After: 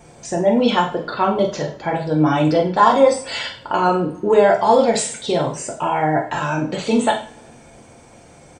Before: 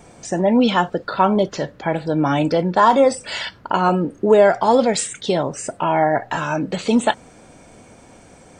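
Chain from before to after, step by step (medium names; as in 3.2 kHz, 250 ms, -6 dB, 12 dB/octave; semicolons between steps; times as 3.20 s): doubling 46 ms -11 dB; two-slope reverb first 0.38 s, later 1.9 s, from -26 dB, DRR 0.5 dB; trim -2.5 dB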